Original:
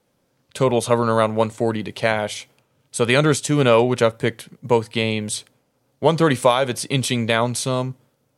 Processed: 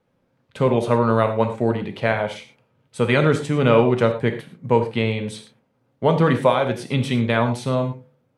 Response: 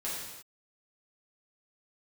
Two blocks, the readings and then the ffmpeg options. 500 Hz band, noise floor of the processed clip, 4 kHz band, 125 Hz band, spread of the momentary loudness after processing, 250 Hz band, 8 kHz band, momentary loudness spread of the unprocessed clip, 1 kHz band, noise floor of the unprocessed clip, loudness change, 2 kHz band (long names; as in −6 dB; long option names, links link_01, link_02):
−0.5 dB, −68 dBFS, −6.5 dB, +1.5 dB, 11 LU, +0.5 dB, below −10 dB, 11 LU, −1.0 dB, −68 dBFS, −0.5 dB, −1.5 dB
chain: -filter_complex "[0:a]bass=frequency=250:gain=3,treble=frequency=4000:gain=-15,bandreject=frequency=72.09:width_type=h:width=4,bandreject=frequency=144.18:width_type=h:width=4,bandreject=frequency=216.27:width_type=h:width=4,bandreject=frequency=288.36:width_type=h:width=4,bandreject=frequency=360.45:width_type=h:width=4,bandreject=frequency=432.54:width_type=h:width=4,bandreject=frequency=504.63:width_type=h:width=4,bandreject=frequency=576.72:width_type=h:width=4,bandreject=frequency=648.81:width_type=h:width=4,bandreject=frequency=720.9:width_type=h:width=4,bandreject=frequency=792.99:width_type=h:width=4,bandreject=frequency=865.08:width_type=h:width=4,asplit=2[link_01][link_02];[1:a]atrim=start_sample=2205,afade=type=out:start_time=0.17:duration=0.01,atrim=end_sample=7938[link_03];[link_02][link_03]afir=irnorm=-1:irlink=0,volume=-6.5dB[link_04];[link_01][link_04]amix=inputs=2:normalize=0,volume=-3.5dB"